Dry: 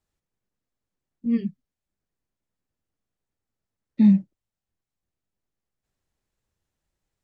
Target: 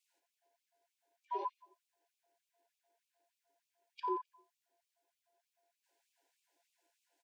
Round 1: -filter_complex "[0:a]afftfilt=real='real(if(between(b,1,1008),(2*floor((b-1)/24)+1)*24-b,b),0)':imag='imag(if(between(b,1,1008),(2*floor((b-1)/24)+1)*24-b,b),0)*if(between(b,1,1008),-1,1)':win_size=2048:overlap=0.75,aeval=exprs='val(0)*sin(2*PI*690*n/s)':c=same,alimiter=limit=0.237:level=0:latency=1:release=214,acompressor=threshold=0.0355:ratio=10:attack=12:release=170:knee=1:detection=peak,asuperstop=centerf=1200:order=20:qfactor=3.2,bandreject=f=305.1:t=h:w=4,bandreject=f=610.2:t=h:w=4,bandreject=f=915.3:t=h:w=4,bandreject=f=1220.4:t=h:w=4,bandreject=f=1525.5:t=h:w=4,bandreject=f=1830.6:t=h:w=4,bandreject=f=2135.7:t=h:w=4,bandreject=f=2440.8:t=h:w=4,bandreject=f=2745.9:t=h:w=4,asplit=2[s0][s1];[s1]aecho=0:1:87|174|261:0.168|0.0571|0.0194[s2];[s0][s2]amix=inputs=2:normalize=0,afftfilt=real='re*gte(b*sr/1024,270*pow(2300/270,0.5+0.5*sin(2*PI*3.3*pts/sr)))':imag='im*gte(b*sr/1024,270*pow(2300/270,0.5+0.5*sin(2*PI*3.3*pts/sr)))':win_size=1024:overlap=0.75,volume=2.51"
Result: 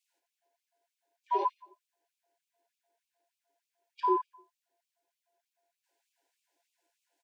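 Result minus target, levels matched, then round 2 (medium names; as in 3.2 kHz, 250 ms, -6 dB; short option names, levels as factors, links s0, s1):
compression: peak gain reduction -9.5 dB
-filter_complex "[0:a]afftfilt=real='real(if(between(b,1,1008),(2*floor((b-1)/24)+1)*24-b,b),0)':imag='imag(if(between(b,1,1008),(2*floor((b-1)/24)+1)*24-b,b),0)*if(between(b,1,1008),-1,1)':win_size=2048:overlap=0.75,aeval=exprs='val(0)*sin(2*PI*690*n/s)':c=same,alimiter=limit=0.237:level=0:latency=1:release=214,acompressor=threshold=0.0106:ratio=10:attack=12:release=170:knee=1:detection=peak,asuperstop=centerf=1200:order=20:qfactor=3.2,bandreject=f=305.1:t=h:w=4,bandreject=f=610.2:t=h:w=4,bandreject=f=915.3:t=h:w=4,bandreject=f=1220.4:t=h:w=4,bandreject=f=1525.5:t=h:w=4,bandreject=f=1830.6:t=h:w=4,bandreject=f=2135.7:t=h:w=4,bandreject=f=2440.8:t=h:w=4,bandreject=f=2745.9:t=h:w=4,asplit=2[s0][s1];[s1]aecho=0:1:87|174|261:0.168|0.0571|0.0194[s2];[s0][s2]amix=inputs=2:normalize=0,afftfilt=real='re*gte(b*sr/1024,270*pow(2300/270,0.5+0.5*sin(2*PI*3.3*pts/sr)))':imag='im*gte(b*sr/1024,270*pow(2300/270,0.5+0.5*sin(2*PI*3.3*pts/sr)))':win_size=1024:overlap=0.75,volume=2.51"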